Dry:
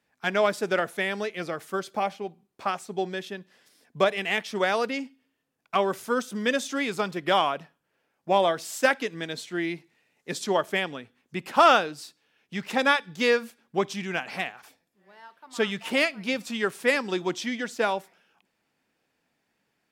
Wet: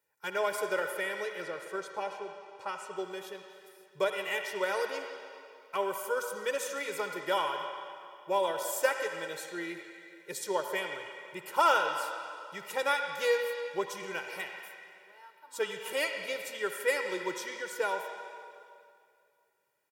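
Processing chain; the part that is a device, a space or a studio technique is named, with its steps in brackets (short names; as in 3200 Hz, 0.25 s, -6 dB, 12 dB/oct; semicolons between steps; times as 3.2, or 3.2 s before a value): tilt +3 dB/oct; bell 3900 Hz -11.5 dB 2.4 oct; comb 2.1 ms, depth 93%; 1.42–2.97 LPF 7300 Hz 12 dB/oct; filtered reverb send (on a send: HPF 590 Hz 6 dB/oct + LPF 5300 Hz 12 dB/oct + reverb RT60 2.3 s, pre-delay 57 ms, DRR 4.5 dB); on the sum: gain -6.5 dB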